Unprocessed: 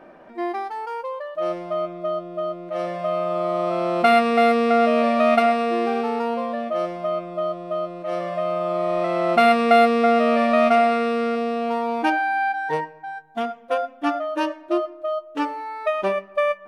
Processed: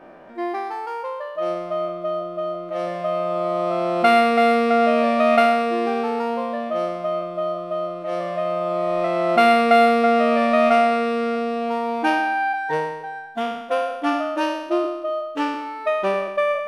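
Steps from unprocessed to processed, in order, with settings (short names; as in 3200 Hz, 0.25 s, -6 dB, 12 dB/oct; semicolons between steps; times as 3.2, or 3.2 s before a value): spectral trails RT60 0.96 s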